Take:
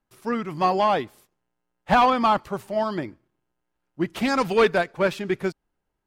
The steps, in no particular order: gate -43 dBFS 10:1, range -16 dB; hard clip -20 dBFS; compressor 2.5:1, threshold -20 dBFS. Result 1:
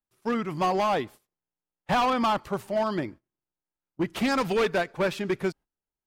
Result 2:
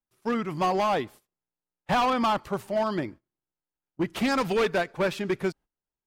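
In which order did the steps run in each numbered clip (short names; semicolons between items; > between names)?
compressor > hard clip > gate; gate > compressor > hard clip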